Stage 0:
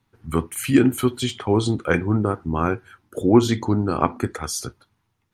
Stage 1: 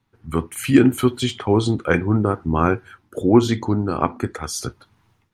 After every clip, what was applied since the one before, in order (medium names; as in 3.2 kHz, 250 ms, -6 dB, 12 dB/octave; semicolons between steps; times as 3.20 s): treble shelf 7.2 kHz -5.5 dB; level rider gain up to 15.5 dB; trim -1 dB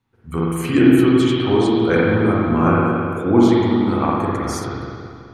spring tank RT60 2.3 s, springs 42/54 ms, chirp 65 ms, DRR -6 dB; trim -4 dB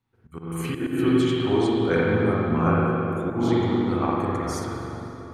slow attack 211 ms; plate-style reverb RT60 4.7 s, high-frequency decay 0.45×, DRR 7.5 dB; trim -6 dB